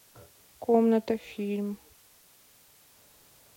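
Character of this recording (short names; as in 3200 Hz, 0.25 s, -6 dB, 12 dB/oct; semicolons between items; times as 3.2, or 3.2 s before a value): random-step tremolo 2.7 Hz, depth 55%; a quantiser's noise floor 10-bit, dither triangular; Vorbis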